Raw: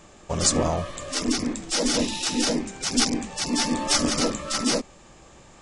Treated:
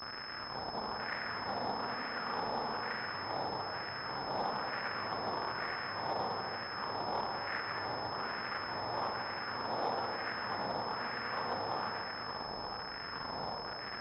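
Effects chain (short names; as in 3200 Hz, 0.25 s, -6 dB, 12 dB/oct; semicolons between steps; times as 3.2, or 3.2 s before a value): per-bin compression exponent 0.6; tilt +2 dB/oct; in parallel at -0.5 dB: negative-ratio compressor -29 dBFS, ratio -1; on the sum: soft clip -14 dBFS, distortion -12 dB; air absorption 200 m; notch comb 830 Hz; Schmitt trigger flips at -26 dBFS; wide varispeed 0.401×; wah 1.1 Hz 770–1800 Hz, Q 2.7; on a send at -1.5 dB: reverb RT60 2.1 s, pre-delay 72 ms; on the sum: pulse-width modulation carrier 5200 Hz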